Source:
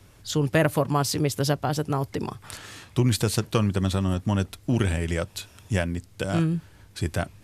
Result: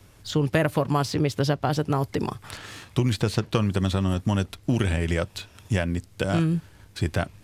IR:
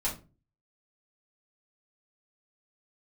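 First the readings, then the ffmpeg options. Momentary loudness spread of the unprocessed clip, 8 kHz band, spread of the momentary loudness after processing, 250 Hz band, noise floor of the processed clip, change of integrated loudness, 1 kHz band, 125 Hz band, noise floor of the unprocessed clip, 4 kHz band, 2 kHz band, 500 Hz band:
11 LU, −6.0 dB, 7 LU, +0.5 dB, −53 dBFS, +0.5 dB, +0.5 dB, +0.5 dB, −53 dBFS, −0.5 dB, +0.5 dB, +0.5 dB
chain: -filter_complex "[0:a]acrossover=split=2500|5100[link_01][link_02][link_03];[link_01]acompressor=threshold=-22dB:ratio=4[link_04];[link_02]acompressor=threshold=-38dB:ratio=4[link_05];[link_03]acompressor=threshold=-50dB:ratio=4[link_06];[link_04][link_05][link_06]amix=inputs=3:normalize=0,asplit=2[link_07][link_08];[link_08]aeval=exprs='sgn(val(0))*max(abs(val(0))-0.00422,0)':channel_layout=same,volume=-6dB[link_09];[link_07][link_09]amix=inputs=2:normalize=0"

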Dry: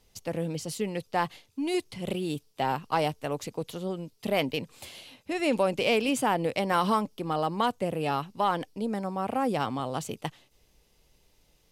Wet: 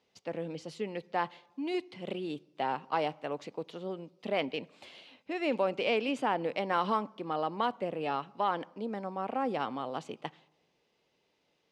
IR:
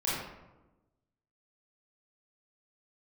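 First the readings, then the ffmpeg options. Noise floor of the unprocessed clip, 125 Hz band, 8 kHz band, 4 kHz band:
−66 dBFS, −10.5 dB, below −15 dB, −6.0 dB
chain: -filter_complex "[0:a]highpass=230,lowpass=3600,asplit=2[link_01][link_02];[1:a]atrim=start_sample=2205[link_03];[link_02][link_03]afir=irnorm=-1:irlink=0,volume=-30.5dB[link_04];[link_01][link_04]amix=inputs=2:normalize=0,volume=-4dB"

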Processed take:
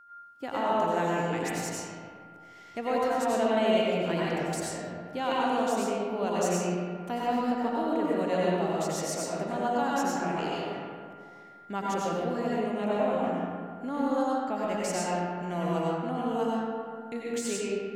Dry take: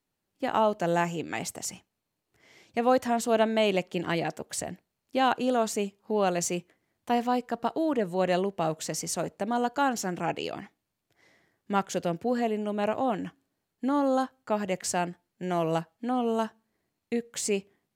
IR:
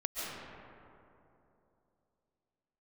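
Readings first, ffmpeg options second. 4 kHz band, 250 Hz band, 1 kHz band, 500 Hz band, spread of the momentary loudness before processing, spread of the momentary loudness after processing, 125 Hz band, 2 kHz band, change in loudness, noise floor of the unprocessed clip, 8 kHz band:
−1.5 dB, 0.0 dB, −0.5 dB, 0.0 dB, 10 LU, 11 LU, +1.0 dB, −1.0 dB, −0.5 dB, −83 dBFS, −3.0 dB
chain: -filter_complex "[0:a]asplit=2[link_01][link_02];[link_02]acompressor=threshold=-36dB:ratio=6,volume=0dB[link_03];[link_01][link_03]amix=inputs=2:normalize=0,aeval=exprs='val(0)+0.00794*sin(2*PI*1400*n/s)':channel_layout=same[link_04];[1:a]atrim=start_sample=2205,asetrate=66150,aresample=44100[link_05];[link_04][link_05]afir=irnorm=-1:irlink=0,volume=-4dB"

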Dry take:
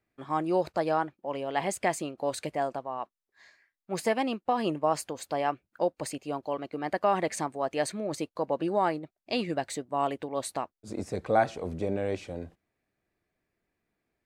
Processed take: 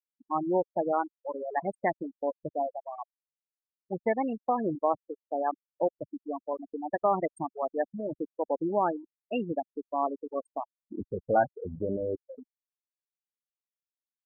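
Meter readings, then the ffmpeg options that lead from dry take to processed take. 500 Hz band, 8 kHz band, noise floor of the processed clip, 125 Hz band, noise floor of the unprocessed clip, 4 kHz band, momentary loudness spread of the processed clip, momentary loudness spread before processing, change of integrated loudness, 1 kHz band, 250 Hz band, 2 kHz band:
−0.5 dB, below −25 dB, below −85 dBFS, −4.0 dB, below −85 dBFS, below −15 dB, 12 LU, 9 LU, −1.0 dB, −0.5 dB, −1.0 dB, −4.5 dB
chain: -af "aeval=exprs='val(0)+0.002*(sin(2*PI*50*n/s)+sin(2*PI*2*50*n/s)/2+sin(2*PI*3*50*n/s)/3+sin(2*PI*4*50*n/s)/4+sin(2*PI*5*50*n/s)/5)':channel_layout=same,afftfilt=real='re*gte(hypot(re,im),0.1)':imag='im*gte(hypot(re,im),0.1)':win_size=1024:overlap=0.75,anlmdn=0.158"

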